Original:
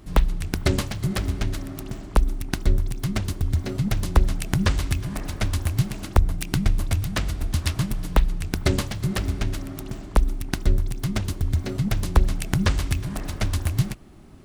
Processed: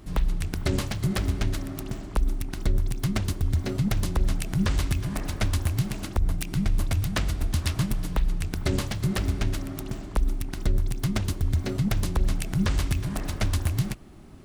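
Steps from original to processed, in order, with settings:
brickwall limiter −14.5 dBFS, peak gain reduction 10.5 dB

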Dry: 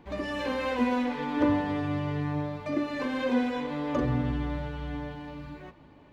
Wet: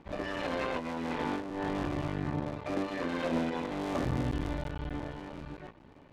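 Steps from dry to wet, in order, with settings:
sub-harmonics by changed cycles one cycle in 3, muted
0:00.44–0:01.98: compressor whose output falls as the input rises −33 dBFS, ratio −1
0:03.80–0:04.68: high-shelf EQ 5,200 Hz +9 dB
soft clipping −23 dBFS, distortion −17 dB
high-frequency loss of the air 61 metres

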